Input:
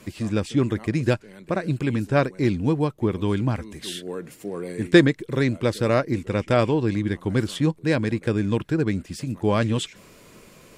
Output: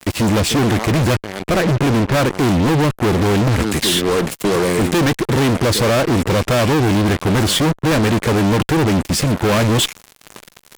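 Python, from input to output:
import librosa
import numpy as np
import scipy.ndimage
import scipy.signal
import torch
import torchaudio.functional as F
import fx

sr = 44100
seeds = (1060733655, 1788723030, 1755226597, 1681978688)

y = fx.lowpass(x, sr, hz=3000.0, slope=24, at=(1.57, 2.27))
y = fx.fuzz(y, sr, gain_db=40.0, gate_db=-42.0)
y = fx.band_squash(y, sr, depth_pct=40, at=(3.6, 4.56))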